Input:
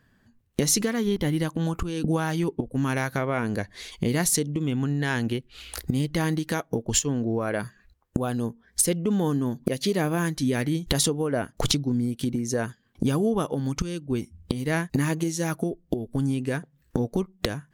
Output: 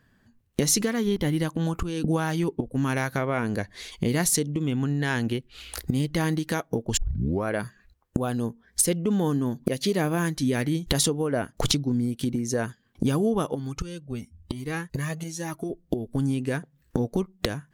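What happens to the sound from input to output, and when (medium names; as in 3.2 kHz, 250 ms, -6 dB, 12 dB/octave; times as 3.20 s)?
6.97 s: tape start 0.47 s
13.55–15.70 s: Shepard-style flanger rising 1 Hz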